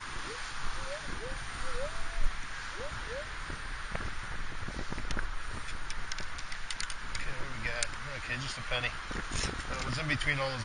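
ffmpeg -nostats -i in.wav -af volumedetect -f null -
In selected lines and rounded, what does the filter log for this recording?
mean_volume: -33.6 dB
max_volume: -13.1 dB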